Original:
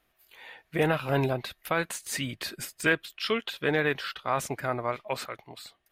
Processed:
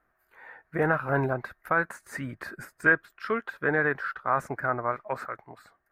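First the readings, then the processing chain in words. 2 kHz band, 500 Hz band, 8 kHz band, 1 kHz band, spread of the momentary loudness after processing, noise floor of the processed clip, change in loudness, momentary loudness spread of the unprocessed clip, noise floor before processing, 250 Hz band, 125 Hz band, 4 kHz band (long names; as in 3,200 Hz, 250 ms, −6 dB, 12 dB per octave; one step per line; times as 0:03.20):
+4.0 dB, −0.5 dB, −14.5 dB, +3.0 dB, 13 LU, −73 dBFS, +1.5 dB, 15 LU, −73 dBFS, −1.0 dB, −1.0 dB, −19.0 dB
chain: high shelf with overshoot 2,200 Hz −12.5 dB, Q 3
level −1 dB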